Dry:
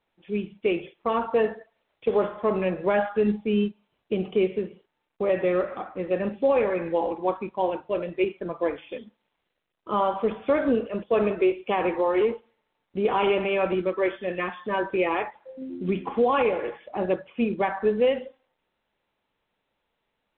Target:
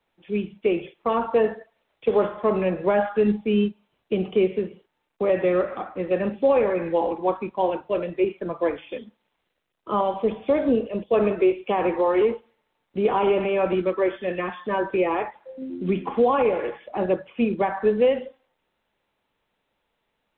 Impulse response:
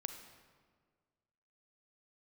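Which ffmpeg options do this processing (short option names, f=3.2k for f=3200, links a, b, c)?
-filter_complex "[0:a]asettb=1/sr,asplit=3[a][b][c];[a]atrim=end=10.014[d];[b]atrim=start=10.01:end=11.14,asetpts=PTS-STARTPTS,afade=t=in:d=0.004:c=qsin,afade=t=out:st=1.126:d=0.004:c=qsin,equalizer=f=1.4k:t=o:w=0.72:g=-13[e];[c]atrim=start=11.136[f];[d][e]acrossfade=d=0.004:c1=hsin:c2=qsin[g];[g][f]acrossfade=d=0.004:c1=qsin:c2=hsin,acrossover=split=140|400|1200[h][i][j][k];[k]alimiter=level_in=6dB:limit=-24dB:level=0:latency=1:release=121,volume=-6dB[l];[h][i][j][l]amix=inputs=4:normalize=0,volume=2.5dB"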